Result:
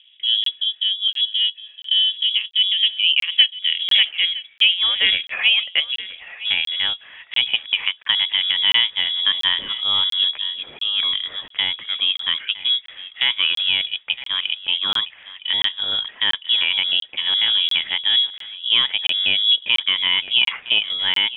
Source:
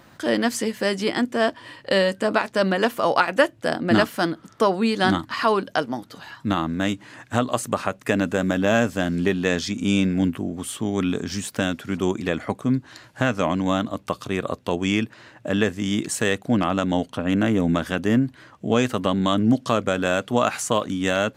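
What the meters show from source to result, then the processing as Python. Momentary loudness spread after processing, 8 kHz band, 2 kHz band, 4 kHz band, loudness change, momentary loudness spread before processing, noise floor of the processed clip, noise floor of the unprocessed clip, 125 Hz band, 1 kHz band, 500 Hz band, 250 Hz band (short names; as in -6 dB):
7 LU, under -20 dB, +3.5 dB, +18.5 dB, +5.0 dB, 7 LU, -49 dBFS, -52 dBFS, under -20 dB, -11.5 dB, under -20 dB, under -25 dB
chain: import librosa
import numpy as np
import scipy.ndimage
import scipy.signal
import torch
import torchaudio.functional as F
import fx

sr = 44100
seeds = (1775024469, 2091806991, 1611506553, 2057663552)

p1 = scipy.signal.sosfilt(scipy.signal.butter(2, 230.0, 'highpass', fs=sr, output='sos'), x)
p2 = fx.high_shelf(p1, sr, hz=2100.0, db=-6.5)
p3 = fx.filter_sweep_lowpass(p2, sr, from_hz=550.0, to_hz=2300.0, start_s=2.16, end_s=5.09, q=0.92)
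p4 = p3 + fx.echo_single(p3, sr, ms=963, db=-16.5, dry=0)
p5 = fx.freq_invert(p4, sr, carrier_hz=3600)
p6 = fx.buffer_crackle(p5, sr, first_s=0.44, period_s=0.69, block=1024, kind='zero')
y = p6 * 10.0 ** (4.0 / 20.0)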